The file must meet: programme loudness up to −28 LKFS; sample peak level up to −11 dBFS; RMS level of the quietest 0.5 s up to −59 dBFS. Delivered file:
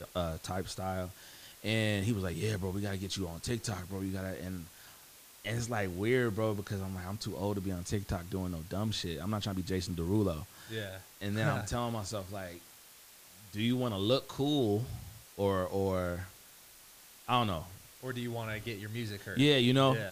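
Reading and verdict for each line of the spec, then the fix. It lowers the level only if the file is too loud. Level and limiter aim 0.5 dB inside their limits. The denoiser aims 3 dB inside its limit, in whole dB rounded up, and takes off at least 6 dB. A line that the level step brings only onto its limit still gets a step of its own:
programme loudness −34.0 LKFS: in spec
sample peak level −15.5 dBFS: in spec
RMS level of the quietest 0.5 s −56 dBFS: out of spec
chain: broadband denoise 6 dB, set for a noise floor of −56 dBFS

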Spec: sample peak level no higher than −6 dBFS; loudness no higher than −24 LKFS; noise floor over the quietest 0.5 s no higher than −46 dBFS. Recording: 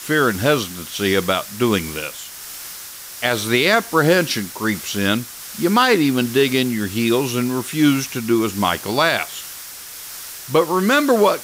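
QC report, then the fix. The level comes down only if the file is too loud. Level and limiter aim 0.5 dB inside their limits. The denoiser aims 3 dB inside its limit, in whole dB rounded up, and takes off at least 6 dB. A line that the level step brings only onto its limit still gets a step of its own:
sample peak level −4.0 dBFS: out of spec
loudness −18.5 LKFS: out of spec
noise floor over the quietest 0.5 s −35 dBFS: out of spec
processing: broadband denoise 8 dB, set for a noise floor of −35 dBFS
level −6 dB

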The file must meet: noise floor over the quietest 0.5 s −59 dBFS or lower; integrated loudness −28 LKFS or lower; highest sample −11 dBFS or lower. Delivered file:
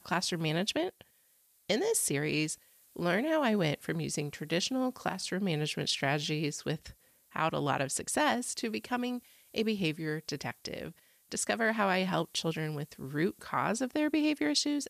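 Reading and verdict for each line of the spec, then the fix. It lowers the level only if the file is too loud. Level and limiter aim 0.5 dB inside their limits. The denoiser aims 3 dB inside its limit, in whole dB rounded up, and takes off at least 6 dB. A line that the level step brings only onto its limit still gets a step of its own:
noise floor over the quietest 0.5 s −68 dBFS: in spec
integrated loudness −32.0 LKFS: in spec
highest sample −16.5 dBFS: in spec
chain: no processing needed

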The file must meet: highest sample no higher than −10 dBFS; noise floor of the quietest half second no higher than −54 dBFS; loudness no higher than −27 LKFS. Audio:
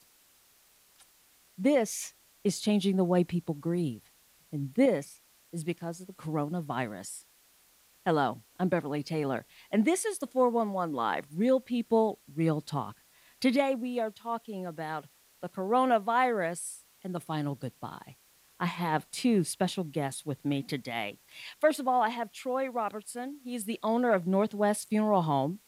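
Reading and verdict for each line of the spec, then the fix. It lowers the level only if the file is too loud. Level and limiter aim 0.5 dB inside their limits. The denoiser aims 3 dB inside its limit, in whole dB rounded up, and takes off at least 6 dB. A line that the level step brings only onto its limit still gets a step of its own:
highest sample −12.5 dBFS: in spec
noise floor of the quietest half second −63 dBFS: in spec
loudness −30.5 LKFS: in spec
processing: no processing needed

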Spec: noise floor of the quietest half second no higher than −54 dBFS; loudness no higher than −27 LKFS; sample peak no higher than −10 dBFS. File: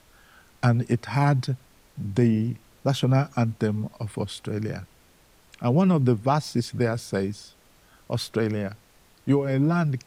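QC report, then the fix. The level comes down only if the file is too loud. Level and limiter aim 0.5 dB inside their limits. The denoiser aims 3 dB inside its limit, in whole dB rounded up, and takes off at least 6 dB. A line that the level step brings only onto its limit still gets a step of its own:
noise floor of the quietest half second −57 dBFS: in spec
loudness −25.0 LKFS: out of spec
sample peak −8.0 dBFS: out of spec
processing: level −2.5 dB

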